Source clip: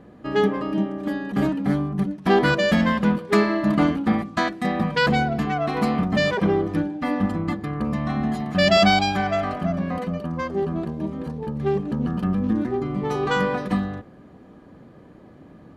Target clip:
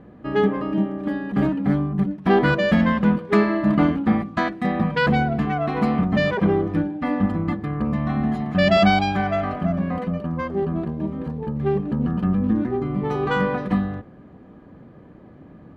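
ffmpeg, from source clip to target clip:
ffmpeg -i in.wav -af "bass=frequency=250:gain=3,treble=frequency=4000:gain=-12" out.wav

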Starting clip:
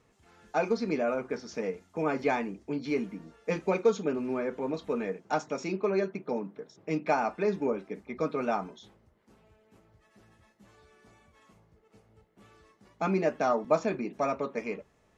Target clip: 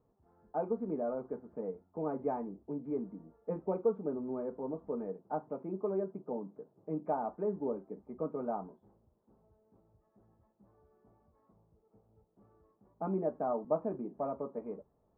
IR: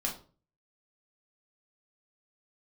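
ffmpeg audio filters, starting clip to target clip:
-af "lowpass=frequency=1000:width=0.5412,lowpass=frequency=1000:width=1.3066,volume=-6dB"

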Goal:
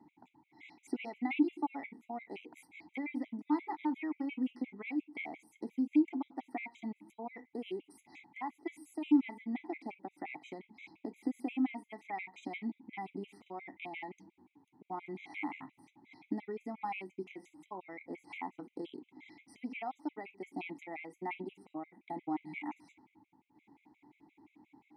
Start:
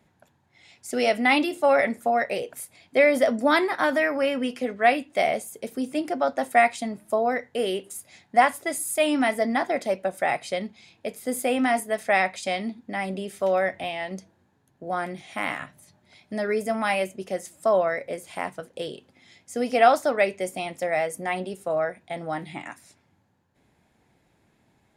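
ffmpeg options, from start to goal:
ffmpeg -i in.wav -filter_complex "[0:a]acompressor=threshold=-38dB:ratio=4,asplit=3[link_01][link_02][link_03];[link_01]bandpass=frequency=300:width_type=q:width=8,volume=0dB[link_04];[link_02]bandpass=frequency=870:width_type=q:width=8,volume=-6dB[link_05];[link_03]bandpass=frequency=2240:width_type=q:width=8,volume=-9dB[link_06];[link_04][link_05][link_06]amix=inputs=3:normalize=0,afftfilt=real='re*gt(sin(2*PI*5.7*pts/sr)*(1-2*mod(floor(b*sr/1024/2000),2)),0)':imag='im*gt(sin(2*PI*5.7*pts/sr)*(1-2*mod(floor(b*sr/1024/2000),2)),0)':win_size=1024:overlap=0.75,volume=15.5dB" out.wav

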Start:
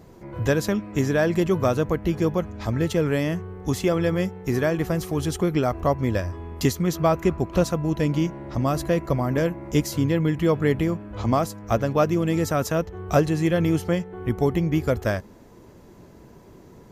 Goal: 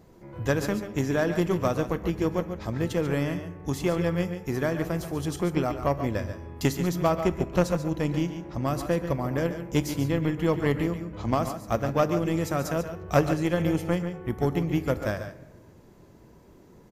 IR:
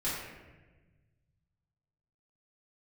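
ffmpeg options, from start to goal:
-filter_complex "[0:a]aeval=exprs='0.501*(cos(1*acos(clip(val(0)/0.501,-1,1)))-cos(1*PI/2))+0.0891*(cos(3*acos(clip(val(0)/0.501,-1,1)))-cos(3*PI/2))':channel_layout=same,aecho=1:1:125|142:0.168|0.316,asplit=2[link_01][link_02];[1:a]atrim=start_sample=2205,highshelf=frequency=10000:gain=10.5[link_03];[link_02][link_03]afir=irnorm=-1:irlink=0,volume=-19.5dB[link_04];[link_01][link_04]amix=inputs=2:normalize=0"

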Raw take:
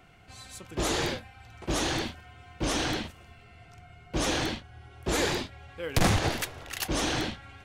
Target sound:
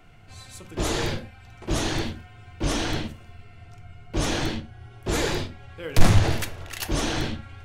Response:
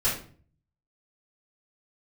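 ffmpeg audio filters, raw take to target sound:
-filter_complex "[0:a]asplit=2[link_01][link_02];[1:a]atrim=start_sample=2205,afade=type=out:start_time=0.17:duration=0.01,atrim=end_sample=7938,lowshelf=frequency=460:gain=11[link_03];[link_02][link_03]afir=irnorm=-1:irlink=0,volume=-20.5dB[link_04];[link_01][link_04]amix=inputs=2:normalize=0"

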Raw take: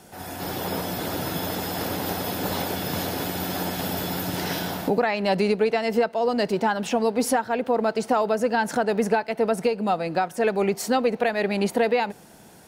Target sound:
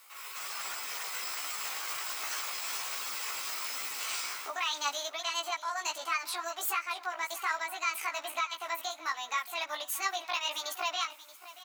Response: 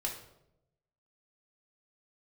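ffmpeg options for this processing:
-af "highpass=1100,highshelf=frequency=12000:gain=4.5,asetrate=60591,aresample=44100,atempo=0.727827,flanger=delay=16:depth=3.6:speed=1.2,aecho=1:1:684:0.15,asetrate=48000,aresample=44100"

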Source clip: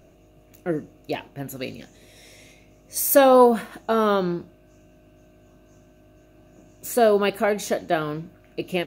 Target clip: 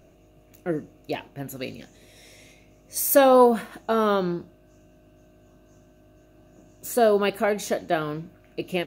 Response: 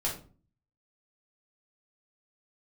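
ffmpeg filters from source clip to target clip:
-filter_complex "[0:a]asettb=1/sr,asplit=3[link_01][link_02][link_03];[link_01]atrim=end=4.314[link_04];[link_02]atrim=start=4.31:end=7.19,asetpts=PTS-STARTPTS,afade=type=in:duration=0.004:curve=qsin,afade=type=out:start_time=2.876:duration=0.004:curve=qsin,equalizer=frequency=2300:width=5.7:gain=-6.5[link_05];[link_03]atrim=start=7.186[link_06];[link_04][link_05]acrossfade=duration=0.004:curve1=hsin:curve2=qsin[link_07];[link_07][link_06]acrossfade=duration=0.004:curve1=qsin:curve2=hsin,volume=-1.5dB"

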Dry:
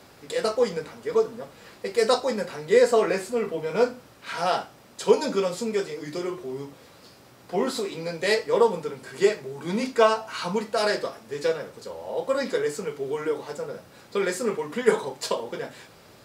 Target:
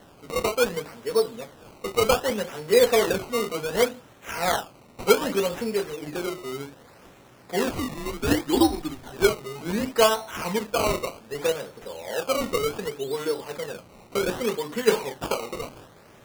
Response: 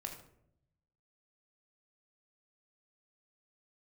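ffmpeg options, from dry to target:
-filter_complex "[0:a]acrusher=samples=18:mix=1:aa=0.000001:lfo=1:lforange=18:lforate=0.66,asettb=1/sr,asplit=3[link_01][link_02][link_03];[link_01]atrim=end=7.734[link_04];[link_02]atrim=start=7.73:end=9.12,asetpts=PTS-STARTPTS,afade=type=in:duration=0.004:curve=qsin,afade=type=out:start_time=1.386:duration=0.004:curve=qsin,afreqshift=-140[link_05];[link_03]atrim=start=9.116[link_06];[link_04][link_05]acrossfade=duration=0.004:curve1=hsin:curve2=qsin[link_07];[link_07][link_06]acrossfade=duration=0.004:curve1=qsin:curve2=hsin"

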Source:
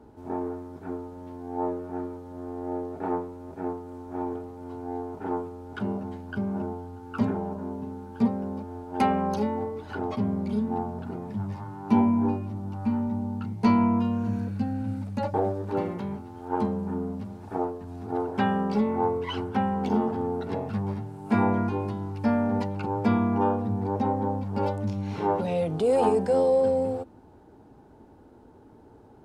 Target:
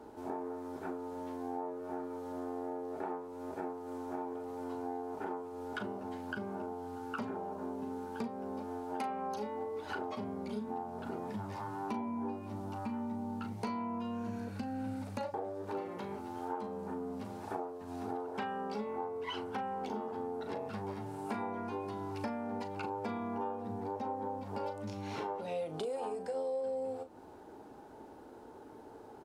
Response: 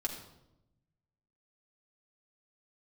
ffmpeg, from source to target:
-filter_complex "[0:a]bass=frequency=250:gain=-13,treble=frequency=4000:gain=2,acompressor=threshold=-40dB:ratio=8,asplit=2[link_01][link_02];[link_02]adelay=38,volume=-10.5dB[link_03];[link_01][link_03]amix=inputs=2:normalize=0,volume=3.5dB"

